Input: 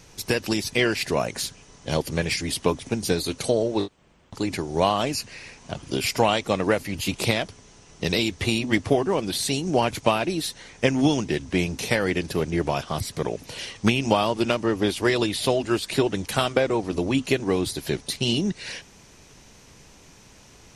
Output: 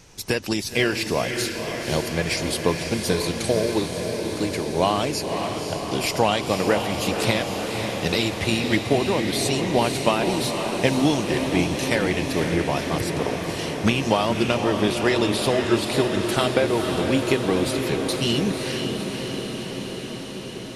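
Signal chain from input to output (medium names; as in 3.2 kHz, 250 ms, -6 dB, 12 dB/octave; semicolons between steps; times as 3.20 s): echo that smears into a reverb 525 ms, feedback 76%, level -6 dB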